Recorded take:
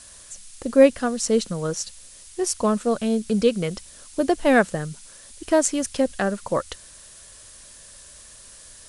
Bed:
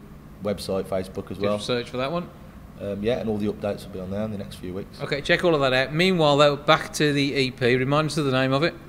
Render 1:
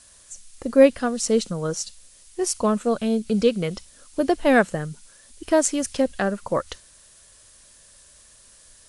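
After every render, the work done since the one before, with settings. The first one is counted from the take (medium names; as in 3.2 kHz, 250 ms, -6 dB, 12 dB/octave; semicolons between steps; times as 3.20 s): noise print and reduce 6 dB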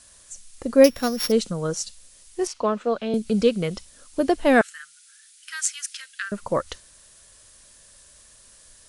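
0.84–1.32 s: sorted samples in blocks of 8 samples; 2.47–3.14 s: three-band isolator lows -12 dB, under 270 Hz, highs -23 dB, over 5.1 kHz; 4.61–6.32 s: elliptic high-pass 1.4 kHz, stop band 50 dB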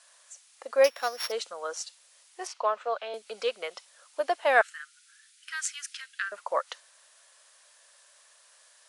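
high-pass 630 Hz 24 dB/octave; treble shelf 5 kHz -11.5 dB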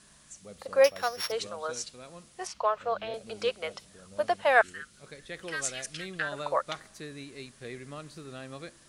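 add bed -21.5 dB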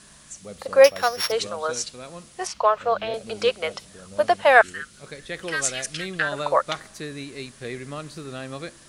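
trim +8 dB; peak limiter -2 dBFS, peak gain reduction 1.5 dB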